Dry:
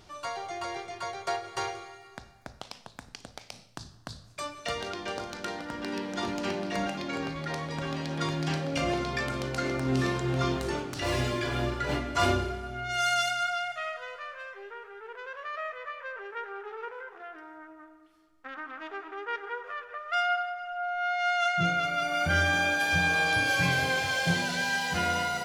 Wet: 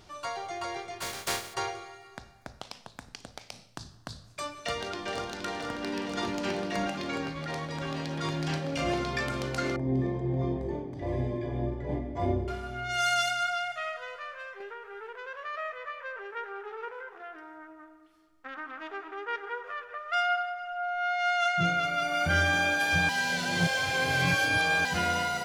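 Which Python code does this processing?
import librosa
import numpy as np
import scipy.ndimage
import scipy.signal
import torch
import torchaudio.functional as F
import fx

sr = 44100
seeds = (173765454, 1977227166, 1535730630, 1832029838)

y = fx.spec_flatten(x, sr, power=0.35, at=(1.0, 1.53), fade=0.02)
y = fx.echo_throw(y, sr, start_s=4.45, length_s=0.84, ms=470, feedback_pct=80, wet_db=-7.0)
y = fx.transient(y, sr, attack_db=-10, sustain_db=-6, at=(7.21, 8.87))
y = fx.moving_average(y, sr, points=32, at=(9.76, 12.48))
y = fx.band_squash(y, sr, depth_pct=100, at=(14.6, 15.18))
y = fx.edit(y, sr, fx.reverse_span(start_s=23.09, length_s=1.76), tone=tone)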